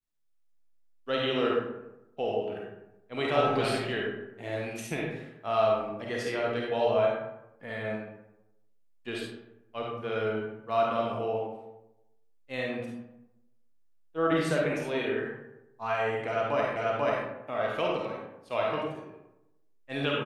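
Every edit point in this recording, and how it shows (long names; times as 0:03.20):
0:16.76: the same again, the last 0.49 s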